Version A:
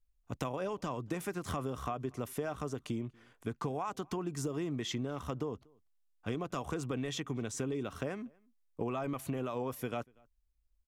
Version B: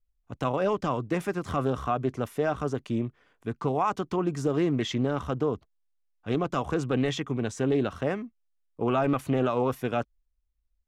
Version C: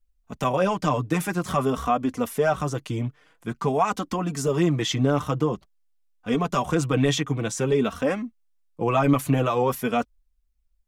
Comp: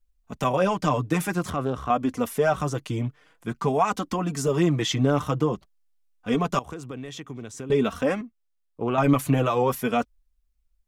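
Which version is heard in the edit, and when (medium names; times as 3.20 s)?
C
1.50–1.90 s: from B
6.59–7.70 s: from A
8.21–8.98 s: from B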